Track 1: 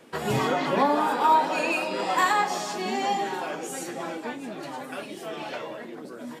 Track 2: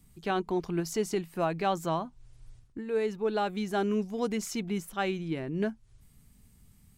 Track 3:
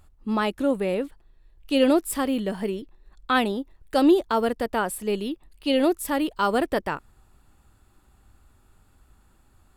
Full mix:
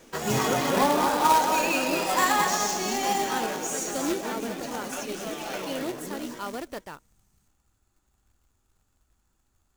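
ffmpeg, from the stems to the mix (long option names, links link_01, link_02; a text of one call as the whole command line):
ffmpeg -i stem1.wav -i stem2.wav -i stem3.wav -filter_complex "[0:a]volume=-1.5dB,asplit=2[link_01][link_02];[link_02]volume=-6dB[link_03];[1:a]adelay=500,volume=-11.5dB[link_04];[2:a]volume=-13dB[link_05];[link_03]aecho=0:1:225|450|675:1|0.19|0.0361[link_06];[link_01][link_04][link_05][link_06]amix=inputs=4:normalize=0,equalizer=frequency=6300:width_type=o:width=0.48:gain=13,acrusher=bits=2:mode=log:mix=0:aa=0.000001" out.wav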